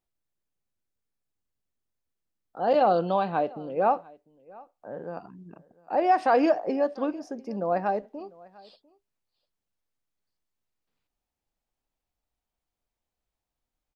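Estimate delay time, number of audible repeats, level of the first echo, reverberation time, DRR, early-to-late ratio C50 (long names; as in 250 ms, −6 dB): 698 ms, 1, −24.0 dB, no reverb audible, no reverb audible, no reverb audible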